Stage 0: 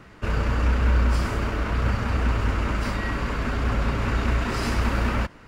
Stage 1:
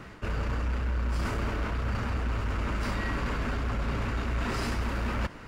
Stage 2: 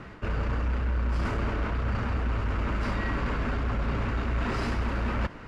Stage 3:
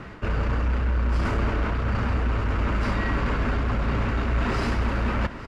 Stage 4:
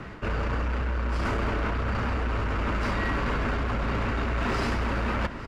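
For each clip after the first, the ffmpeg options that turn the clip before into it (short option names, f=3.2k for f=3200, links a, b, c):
-af "areverse,acompressor=threshold=-28dB:ratio=6,areverse,asoftclip=type=tanh:threshold=-25dB,volume=3dB"
-af "aemphasis=mode=reproduction:type=50fm,volume=1.5dB"
-af "aecho=1:1:856:0.15,volume=4dB"
-filter_complex "[0:a]acrossover=split=320[a][b];[a]alimiter=level_in=0.5dB:limit=-24dB:level=0:latency=1:release=16,volume=-0.5dB[c];[c][b]amix=inputs=2:normalize=0,asoftclip=type=hard:threshold=-20dB"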